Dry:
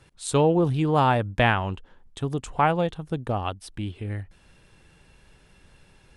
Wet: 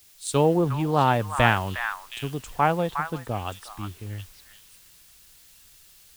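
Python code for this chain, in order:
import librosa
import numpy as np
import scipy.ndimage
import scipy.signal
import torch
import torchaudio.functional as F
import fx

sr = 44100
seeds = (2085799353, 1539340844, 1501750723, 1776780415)

y = fx.quant_dither(x, sr, seeds[0], bits=8, dither='triangular')
y = fx.echo_stepped(y, sr, ms=360, hz=1400.0, octaves=1.4, feedback_pct=70, wet_db=-0.5)
y = fx.band_widen(y, sr, depth_pct=40)
y = y * 10.0 ** (-2.0 / 20.0)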